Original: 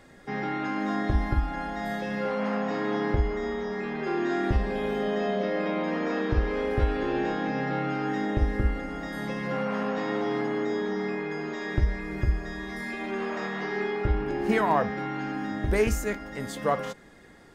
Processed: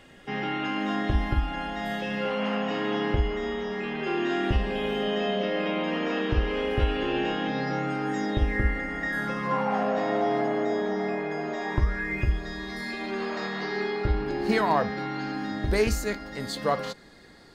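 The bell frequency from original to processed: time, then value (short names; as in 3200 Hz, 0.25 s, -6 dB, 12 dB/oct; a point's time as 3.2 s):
bell +14.5 dB 0.35 oct
7.44 s 2900 Hz
8.04 s 11000 Hz
8.56 s 1900 Hz
9.06 s 1900 Hz
9.88 s 660 Hz
11.57 s 660 Hz
12.48 s 4300 Hz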